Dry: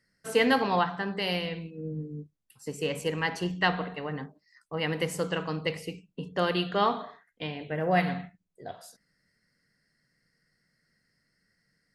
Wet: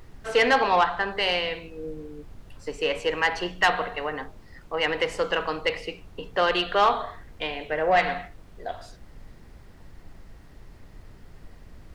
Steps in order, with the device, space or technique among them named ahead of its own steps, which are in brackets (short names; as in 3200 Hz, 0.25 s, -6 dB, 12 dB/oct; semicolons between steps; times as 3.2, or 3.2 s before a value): aircraft cabin announcement (BPF 480–4000 Hz; soft clip -20.5 dBFS, distortion -15 dB; brown noise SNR 16 dB); 0.57–1.11 LPF 9900 Hz; gain +8.5 dB